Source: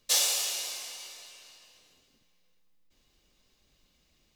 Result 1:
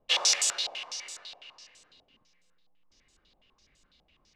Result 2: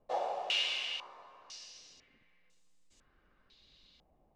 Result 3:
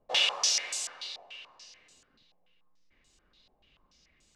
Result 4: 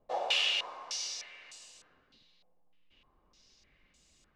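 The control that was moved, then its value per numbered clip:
low-pass on a step sequencer, speed: 12, 2, 6.9, 3.3 Hertz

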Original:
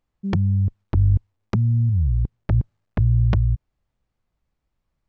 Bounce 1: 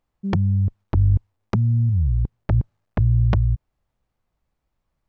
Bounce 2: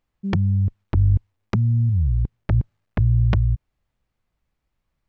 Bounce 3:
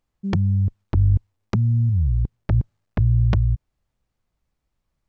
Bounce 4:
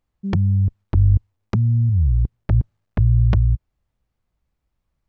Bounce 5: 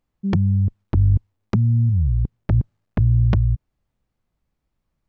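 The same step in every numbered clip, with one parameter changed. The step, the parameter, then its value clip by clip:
parametric band, centre frequency: 800, 2,300, 7,100, 62, 220 Hertz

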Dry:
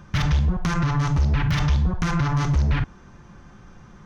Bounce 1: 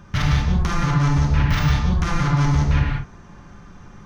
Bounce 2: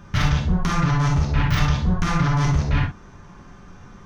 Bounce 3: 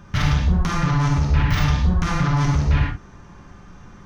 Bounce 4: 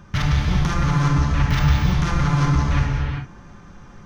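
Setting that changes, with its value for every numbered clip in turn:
reverb whose tail is shaped and stops, gate: 220, 90, 140, 440 milliseconds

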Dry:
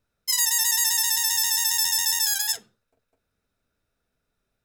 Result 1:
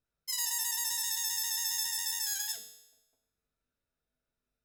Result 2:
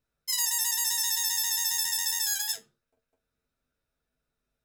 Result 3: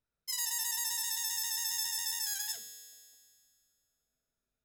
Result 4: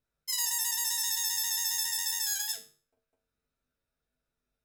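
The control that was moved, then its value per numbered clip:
tuned comb filter, decay: 0.94, 0.16, 2.2, 0.38 seconds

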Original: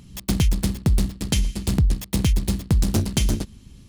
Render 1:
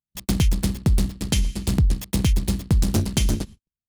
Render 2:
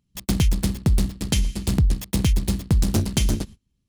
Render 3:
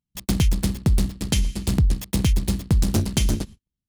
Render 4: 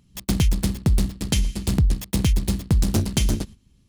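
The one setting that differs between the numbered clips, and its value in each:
noise gate, range: −54, −27, −42, −13 decibels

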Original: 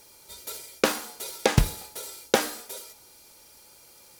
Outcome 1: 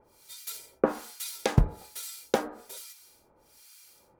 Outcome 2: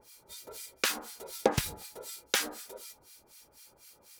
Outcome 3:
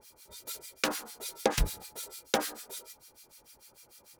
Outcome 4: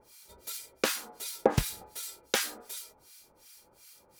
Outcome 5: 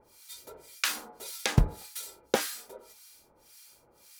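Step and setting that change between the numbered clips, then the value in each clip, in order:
two-band tremolo in antiphase, speed: 1.2, 4, 6.7, 2.7, 1.8 Hertz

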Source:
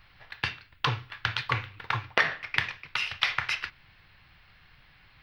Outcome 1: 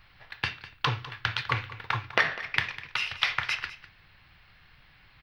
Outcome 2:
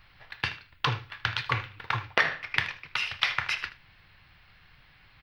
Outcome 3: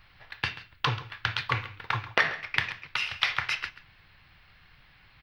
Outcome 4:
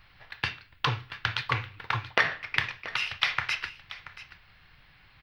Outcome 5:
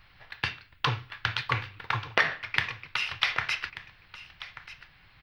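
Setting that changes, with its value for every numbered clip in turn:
single-tap delay, delay time: 201, 78, 135, 681, 1,186 milliseconds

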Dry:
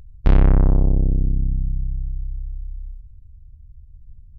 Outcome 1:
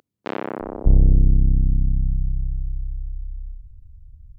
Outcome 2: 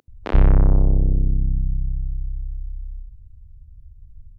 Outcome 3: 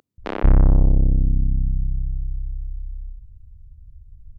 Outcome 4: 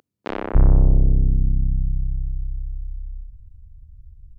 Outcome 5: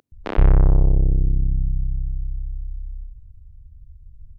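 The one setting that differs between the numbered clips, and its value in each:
multiband delay without the direct sound, delay time: 600, 80, 180, 290, 120 milliseconds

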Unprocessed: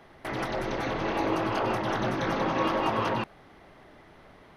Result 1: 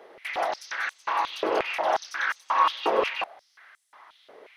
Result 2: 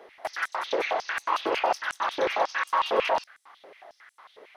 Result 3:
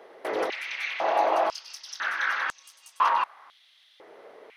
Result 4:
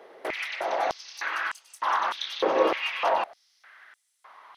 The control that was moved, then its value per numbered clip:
high-pass on a step sequencer, speed: 5.6, 11, 2, 3.3 Hertz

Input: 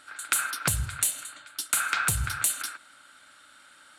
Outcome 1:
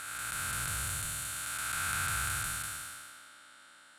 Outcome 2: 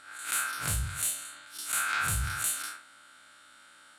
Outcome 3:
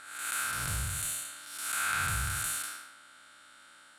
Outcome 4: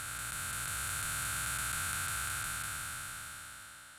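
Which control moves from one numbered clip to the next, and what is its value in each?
spectrum smeared in time, width: 690, 92, 252, 1,720 milliseconds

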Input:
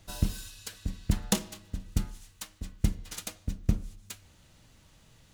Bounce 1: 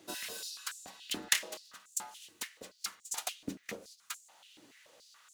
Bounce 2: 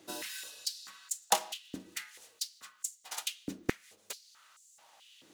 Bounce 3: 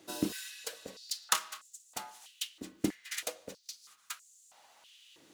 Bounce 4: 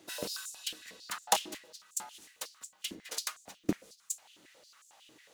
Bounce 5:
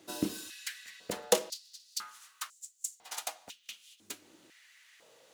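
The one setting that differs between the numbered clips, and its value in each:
high-pass on a step sequencer, speed: 7, 4.6, 3.1, 11, 2 Hertz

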